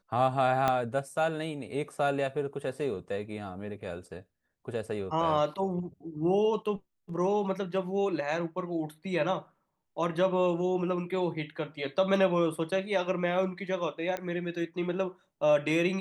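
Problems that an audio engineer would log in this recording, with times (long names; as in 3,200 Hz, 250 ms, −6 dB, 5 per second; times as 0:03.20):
0:00.68: click −13 dBFS
0:14.17: click −20 dBFS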